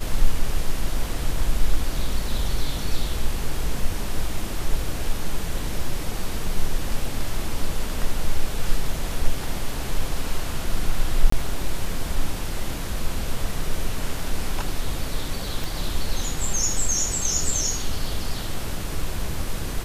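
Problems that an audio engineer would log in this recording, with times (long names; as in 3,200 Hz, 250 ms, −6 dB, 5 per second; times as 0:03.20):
0:11.30–0:11.32: drop-out 24 ms
0:15.64: click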